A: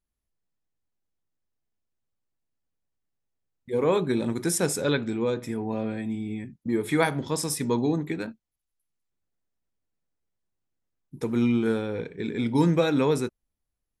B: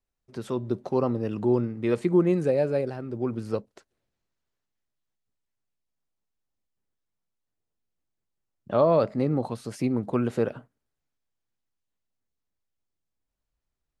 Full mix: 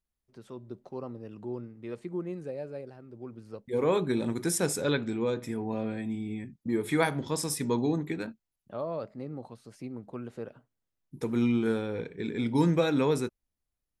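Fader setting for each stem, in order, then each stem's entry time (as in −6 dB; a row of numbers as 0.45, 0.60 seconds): −3.0, −14.0 decibels; 0.00, 0.00 seconds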